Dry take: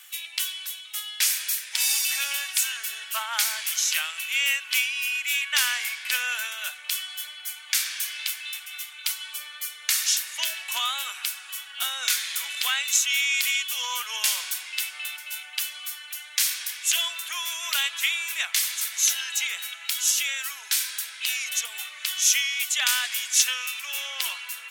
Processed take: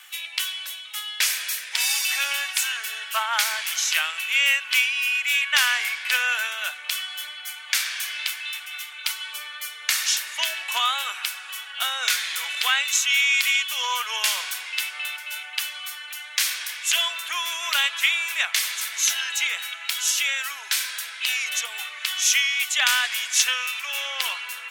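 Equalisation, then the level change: treble shelf 4 kHz -11 dB; +7.5 dB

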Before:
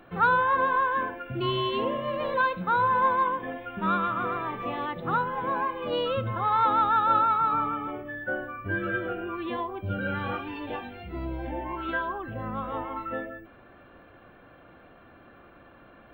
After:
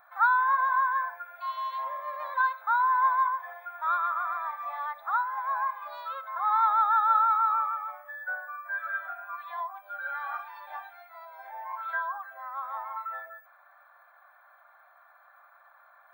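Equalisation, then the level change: brick-wall FIR high-pass 500 Hz; treble shelf 9.9 kHz +11 dB; static phaser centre 1.2 kHz, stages 4; 0.0 dB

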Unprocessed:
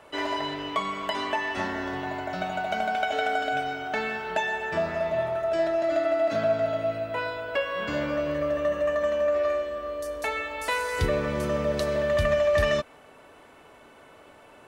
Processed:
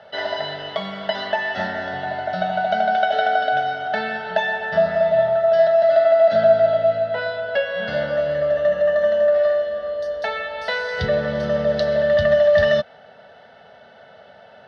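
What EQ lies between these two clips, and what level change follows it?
cabinet simulation 110–6100 Hz, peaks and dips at 200 Hz +8 dB, 680 Hz +4 dB, 2.3 kHz +3 dB; static phaser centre 1.6 kHz, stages 8; +6.5 dB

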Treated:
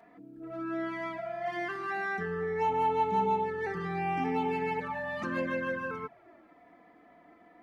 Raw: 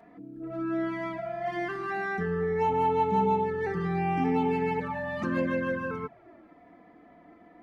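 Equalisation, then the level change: bass shelf 430 Hz -8.5 dB; 0.0 dB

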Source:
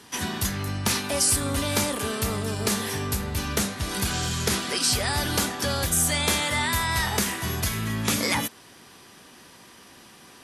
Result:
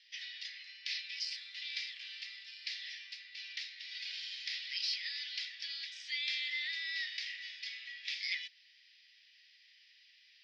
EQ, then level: Chebyshev band-pass 1.9–5.2 kHz, order 4; -8.5 dB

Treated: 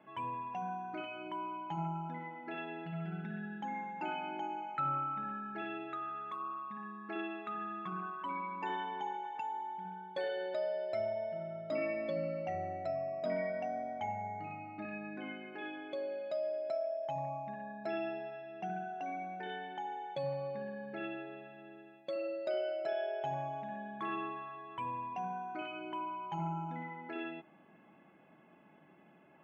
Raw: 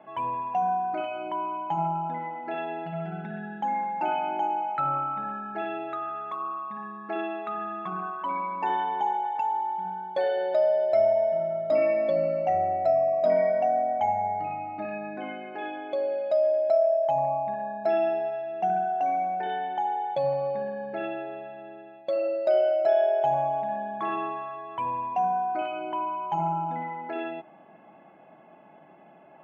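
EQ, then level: peaking EQ 710 Hz -11.5 dB 0.98 oct; -4.0 dB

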